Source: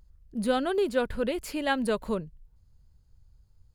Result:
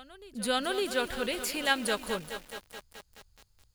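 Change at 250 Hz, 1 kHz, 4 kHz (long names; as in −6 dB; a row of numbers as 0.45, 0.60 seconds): −6.5, −1.5, +6.5 decibels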